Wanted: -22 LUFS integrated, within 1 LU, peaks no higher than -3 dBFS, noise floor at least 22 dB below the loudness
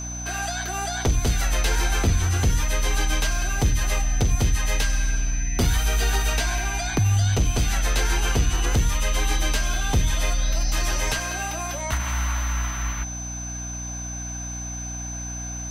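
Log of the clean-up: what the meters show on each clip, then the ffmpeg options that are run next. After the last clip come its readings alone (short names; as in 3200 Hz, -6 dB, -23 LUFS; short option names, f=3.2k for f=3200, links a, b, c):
hum 60 Hz; harmonics up to 300 Hz; hum level -31 dBFS; steady tone 6100 Hz; tone level -33 dBFS; loudness -24.5 LUFS; peak -11.0 dBFS; loudness target -22.0 LUFS
-> -af "bandreject=f=60:t=h:w=6,bandreject=f=120:t=h:w=6,bandreject=f=180:t=h:w=6,bandreject=f=240:t=h:w=6,bandreject=f=300:t=h:w=6"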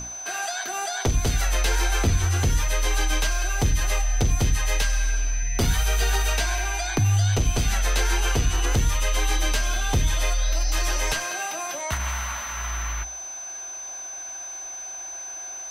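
hum none; steady tone 6100 Hz; tone level -33 dBFS
-> -af "bandreject=f=6.1k:w=30"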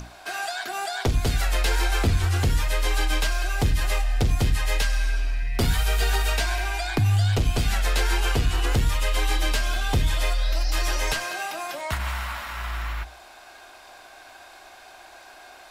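steady tone none; loudness -25.0 LUFS; peak -10.5 dBFS; loudness target -22.0 LUFS
-> -af "volume=3dB"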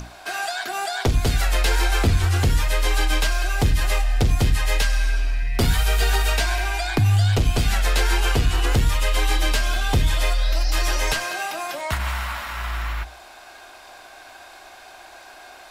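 loudness -22.0 LUFS; peak -7.5 dBFS; noise floor -44 dBFS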